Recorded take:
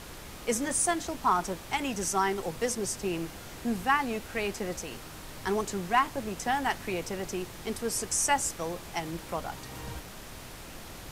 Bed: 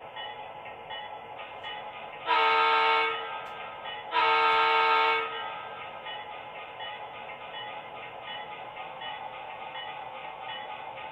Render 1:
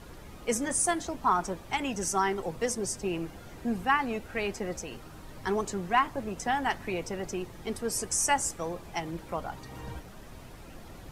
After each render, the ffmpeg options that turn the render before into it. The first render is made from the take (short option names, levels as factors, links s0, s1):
-af "afftdn=nr=10:nf=-45"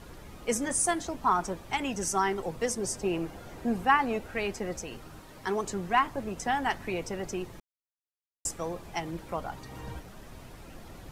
-filter_complex "[0:a]asettb=1/sr,asplit=3[s0][s1][s2];[s0]atrim=end=2.844[s3];[s1]atrim=start=2.84:end=4.3,asetpts=PTS-STARTPTS,afade=t=in:d=0.004:c=qsin,afade=t=out:st=1.456:d=0.004:c=qsin,equalizer=f=640:t=o:w=2:g=4[s4];[s2]atrim=start=4.296[s5];[s3][s4]acrossfade=d=0.004:c1=hsin:c2=qsin[s6];[s6][s5]acrossfade=d=0.004:c1=qsin:c2=hsin,asettb=1/sr,asplit=3[s7][s8][s9];[s7]atrim=end=5.194[s10];[s8]atrim=start=5.19:end=5.64,asetpts=PTS-STARTPTS,afade=t=in:d=0.004:c=qsin,afade=t=out:st=0.446:d=0.004:c=qsin,lowshelf=f=130:g=-10.5[s11];[s9]atrim=start=5.636[s12];[s10][s11]acrossfade=d=0.004:c1=hsin:c2=qsin[s13];[s13][s12]acrossfade=d=0.004:c1=qsin:c2=hsin,asplit=3[s14][s15][s16];[s14]atrim=end=7.6,asetpts=PTS-STARTPTS,afade=t=out:st=7.596:d=0.004:c=hsin[s17];[s15]atrim=start=7.6:end=8.45,asetpts=PTS-STARTPTS,volume=0[s18];[s16]atrim=start=8.45,asetpts=PTS-STARTPTS,afade=t=in:d=0.004:c=hsin[s19];[s17][s18][s19]concat=n=3:v=0:a=1"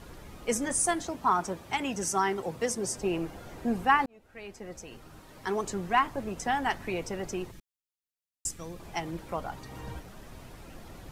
-filter_complex "[0:a]asettb=1/sr,asplit=3[s0][s1][s2];[s0]atrim=end=1.054[s3];[s1]atrim=start=1.05:end=2.98,asetpts=PTS-STARTPTS,afade=t=in:d=0.004:c=qsin,afade=t=out:st=1.926:d=0.004:c=qsin,highpass=73[s4];[s2]atrim=start=2.976[s5];[s3][s4]acrossfade=d=0.004:c1=hsin:c2=qsin[s6];[s6][s5]acrossfade=d=0.004:c1=qsin:c2=hsin,asettb=1/sr,asplit=3[s7][s8][s9];[s7]atrim=end=7.514[s10];[s8]atrim=start=7.51:end=8.8,asetpts=PTS-STARTPTS,afade=t=in:d=0.004:c=qsin,afade=t=out:st=1.286:d=0.004:c=qsin,equalizer=f=730:w=0.64:g=-12[s11];[s9]atrim=start=8.796[s12];[s10][s11]acrossfade=d=0.004:c1=hsin:c2=qsin[s13];[s13][s12]acrossfade=d=0.004:c1=qsin:c2=hsin,asplit=2[s14][s15];[s14]atrim=end=4.06,asetpts=PTS-STARTPTS,afade=t=out:st=4.056:d=0.004:c=hsin[s16];[s15]atrim=start=4.06,asetpts=PTS-STARTPTS,afade=t=in:d=1.54[s17];[s16][s17]concat=n=2:v=0:a=1"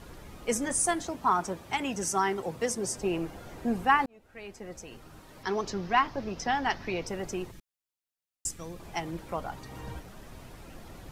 -filter_complex "[0:a]asettb=1/sr,asplit=3[s0][s1][s2];[s0]atrim=end=5.434[s3];[s1]atrim=start=5.43:end=7.07,asetpts=PTS-STARTPTS,afade=t=in:d=0.004:c=qsin,afade=t=out:st=1.636:d=0.004:c=qsin,highshelf=f=6700:t=q:w=3:g=-8.5[s4];[s2]atrim=start=7.066[s5];[s3][s4]acrossfade=d=0.004:c1=hsin:c2=qsin[s6];[s6][s5]acrossfade=d=0.004:c1=qsin:c2=hsin"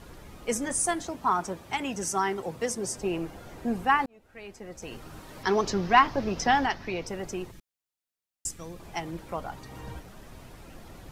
-filter_complex "[0:a]asettb=1/sr,asplit=3[s0][s1][s2];[s0]atrim=end=4.824[s3];[s1]atrim=start=4.82:end=6.66,asetpts=PTS-STARTPTS,afade=t=in:d=0.004:c=qsin,afade=t=out:st=1.836:d=0.004:c=qsin,acontrast=47[s4];[s2]atrim=start=6.656[s5];[s3][s4]acrossfade=d=0.004:c1=hsin:c2=qsin[s6];[s6][s5]acrossfade=d=0.004:c1=qsin:c2=hsin"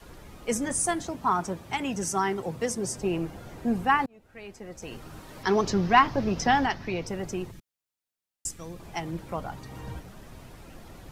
-af "adynamicequalizer=threshold=0.00631:dfrequency=130:dqfactor=0.75:tfrequency=130:tqfactor=0.75:attack=5:release=100:ratio=0.375:range=3:mode=boostabove:tftype=bell"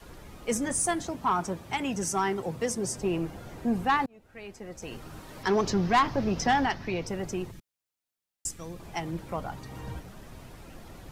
-af "asoftclip=type=tanh:threshold=0.158"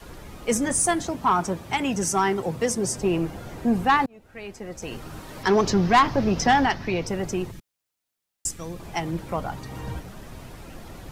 -af "volume=1.88"